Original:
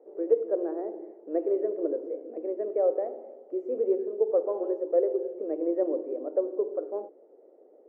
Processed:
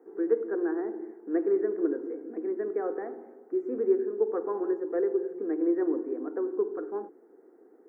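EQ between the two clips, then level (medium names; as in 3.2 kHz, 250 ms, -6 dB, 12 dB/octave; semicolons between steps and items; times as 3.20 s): bass shelf 340 Hz +6.5 dB; peaking EQ 1.6 kHz +11 dB 0.55 oct; static phaser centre 1.4 kHz, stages 4; +5.5 dB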